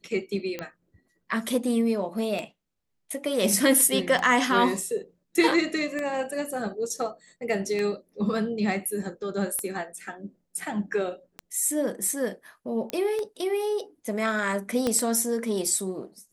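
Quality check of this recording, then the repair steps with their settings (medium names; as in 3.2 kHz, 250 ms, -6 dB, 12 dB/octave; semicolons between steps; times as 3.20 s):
tick 33 1/3 rpm -17 dBFS
12.90 s: pop -15 dBFS
14.87 s: pop -12 dBFS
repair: de-click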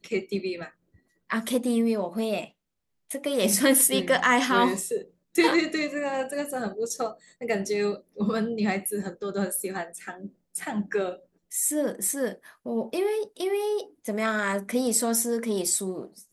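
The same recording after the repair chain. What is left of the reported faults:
14.87 s: pop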